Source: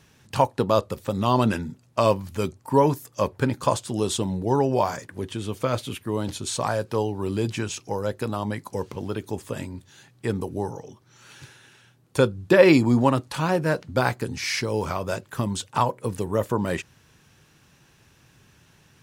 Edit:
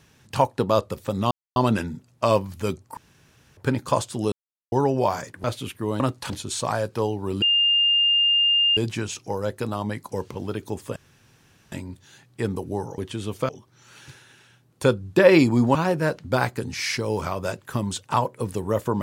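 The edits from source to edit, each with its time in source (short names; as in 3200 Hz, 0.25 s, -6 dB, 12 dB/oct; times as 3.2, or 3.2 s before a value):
1.31 insert silence 0.25 s
2.72–3.32 room tone
4.07–4.47 mute
5.19–5.7 move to 10.83
7.38 add tone 2810 Hz -16 dBFS 1.35 s
9.57 insert room tone 0.76 s
13.09–13.39 move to 6.26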